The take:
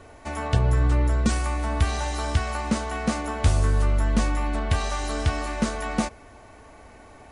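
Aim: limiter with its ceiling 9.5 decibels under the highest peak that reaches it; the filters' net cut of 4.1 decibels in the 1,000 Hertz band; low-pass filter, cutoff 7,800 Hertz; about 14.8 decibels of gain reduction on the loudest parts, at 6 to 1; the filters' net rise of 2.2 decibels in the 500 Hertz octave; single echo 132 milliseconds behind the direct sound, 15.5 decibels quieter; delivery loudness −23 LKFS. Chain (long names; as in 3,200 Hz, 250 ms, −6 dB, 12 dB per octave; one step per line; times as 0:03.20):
low-pass filter 7,800 Hz
parametric band 500 Hz +5 dB
parametric band 1,000 Hz −7 dB
downward compressor 6 to 1, threshold −32 dBFS
brickwall limiter −28 dBFS
single-tap delay 132 ms −15.5 dB
level +15 dB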